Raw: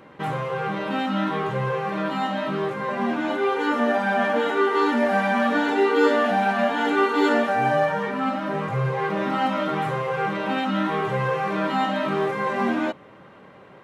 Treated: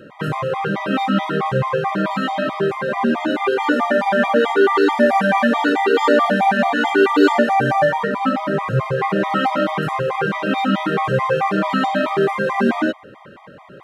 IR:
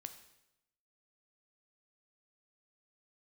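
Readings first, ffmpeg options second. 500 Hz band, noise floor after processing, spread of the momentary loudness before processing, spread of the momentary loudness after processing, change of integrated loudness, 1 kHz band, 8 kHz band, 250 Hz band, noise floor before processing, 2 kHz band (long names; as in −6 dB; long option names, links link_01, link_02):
+5.5 dB, −42 dBFS, 6 LU, 7 LU, +5.0 dB, +5.0 dB, can't be measured, +5.0 dB, −48 dBFS, +5.0 dB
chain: -af "afftfilt=real='re*gt(sin(2*PI*4.6*pts/sr)*(1-2*mod(floor(b*sr/1024/630),2)),0)':imag='im*gt(sin(2*PI*4.6*pts/sr)*(1-2*mod(floor(b*sr/1024/630),2)),0)':win_size=1024:overlap=0.75,volume=8.5dB"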